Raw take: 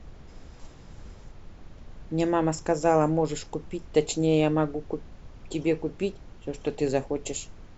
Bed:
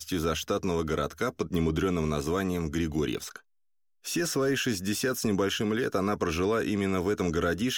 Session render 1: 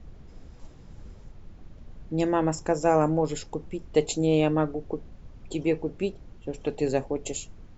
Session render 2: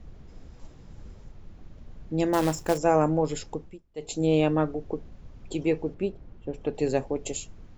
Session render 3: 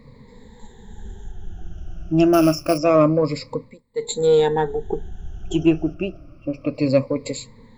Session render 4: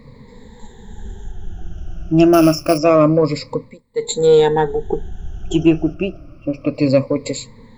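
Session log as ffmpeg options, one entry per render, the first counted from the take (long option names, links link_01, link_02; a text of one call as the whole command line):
ffmpeg -i in.wav -af "afftdn=noise_reduction=6:noise_floor=-48" out.wav
ffmpeg -i in.wav -filter_complex "[0:a]asettb=1/sr,asplit=3[link_01][link_02][link_03];[link_01]atrim=end=2.334[link_04];[link_02]atrim=start=2.33:end=2.78,asetpts=PTS-STARTPTS,afade=type=in:duration=0.004:curve=qsin,afade=type=out:start_time=0.446:duration=0.004:curve=qsin,acrusher=bits=3:mode=log:mix=0:aa=0.000001[link_05];[link_03]atrim=start=2.776[link_06];[link_04][link_05]acrossfade=duration=0.004:curve1=hsin:curve2=qsin[link_07];[link_07][link_06]acrossfade=duration=0.004:curve1=qsin:curve2=hsin,asettb=1/sr,asplit=3[link_08][link_09][link_10];[link_08]atrim=end=5.944[link_11];[link_09]atrim=start=5.94:end=6.75,asetpts=PTS-STARTPTS,afade=type=in:duration=0.004:curve=qsin,afade=type=out:start_time=0.806:duration=0.004:curve=qsin,lowpass=frequency=1800:poles=1[link_12];[link_10]atrim=start=6.746[link_13];[link_11][link_12]acrossfade=duration=0.004:curve1=hsin:curve2=qsin[link_14];[link_14][link_13]acrossfade=duration=0.004:curve1=qsin:curve2=hsin,asplit=3[link_15][link_16][link_17];[link_15]atrim=end=3.82,asetpts=PTS-STARTPTS,afade=type=out:start_time=3.52:duration=0.3:silence=0.0668344[link_18];[link_16]atrim=start=3.82:end=3.95,asetpts=PTS-STARTPTS,volume=-23.5dB[link_19];[link_17]atrim=start=3.95,asetpts=PTS-STARTPTS,afade=type=in:duration=0.3:silence=0.0668344[link_20];[link_18][link_19][link_20]concat=n=3:v=0:a=1" out.wav
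ffmpeg -i in.wav -filter_complex "[0:a]afftfilt=real='re*pow(10,23/40*sin(2*PI*(0.97*log(max(b,1)*sr/1024/100)/log(2)-(-0.27)*(pts-256)/sr)))':imag='im*pow(10,23/40*sin(2*PI*(0.97*log(max(b,1)*sr/1024/100)/log(2)-(-0.27)*(pts-256)/sr)))':win_size=1024:overlap=0.75,asplit=2[link_01][link_02];[link_02]asoftclip=type=tanh:threshold=-16.5dB,volume=-10dB[link_03];[link_01][link_03]amix=inputs=2:normalize=0" out.wav
ffmpeg -i in.wav -af "volume=4.5dB,alimiter=limit=-2dB:level=0:latency=1" out.wav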